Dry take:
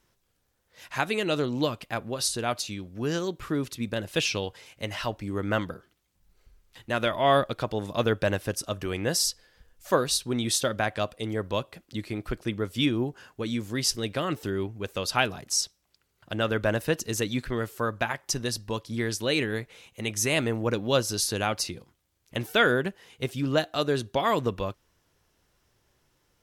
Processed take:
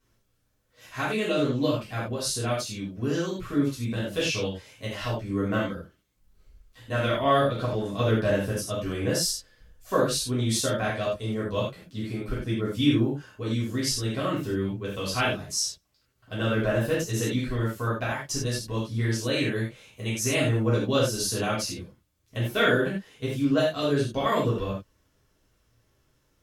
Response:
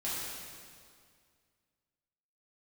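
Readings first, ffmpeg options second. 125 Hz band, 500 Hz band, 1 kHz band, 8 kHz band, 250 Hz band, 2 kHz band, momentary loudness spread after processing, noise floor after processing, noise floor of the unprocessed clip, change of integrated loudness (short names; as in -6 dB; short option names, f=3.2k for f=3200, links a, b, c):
+5.0 dB, +1.0 dB, -1.0 dB, -1.0 dB, +3.0 dB, -1.0 dB, 10 LU, -70 dBFS, -73 dBFS, +1.0 dB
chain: -filter_complex "[0:a]lowshelf=f=310:g=5.5[a];[1:a]atrim=start_sample=2205,afade=t=out:st=0.23:d=0.01,atrim=end_sample=10584,asetrate=74970,aresample=44100[b];[a][b]afir=irnorm=-1:irlink=0"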